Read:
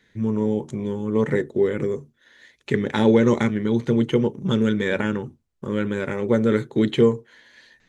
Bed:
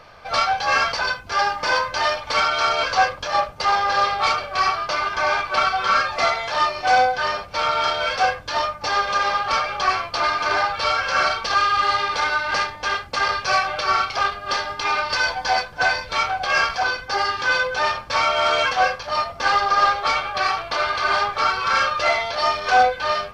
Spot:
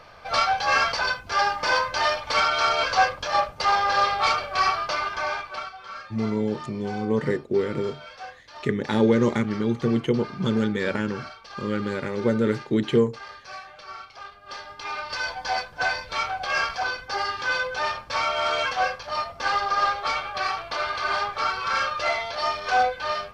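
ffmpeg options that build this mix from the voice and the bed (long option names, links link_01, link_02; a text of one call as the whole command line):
ffmpeg -i stem1.wav -i stem2.wav -filter_complex "[0:a]adelay=5950,volume=-3dB[link_01];[1:a]volume=12.5dB,afade=type=out:start_time=4.78:duration=0.95:silence=0.125893,afade=type=in:start_time=14.26:duration=1.43:silence=0.188365[link_02];[link_01][link_02]amix=inputs=2:normalize=0" out.wav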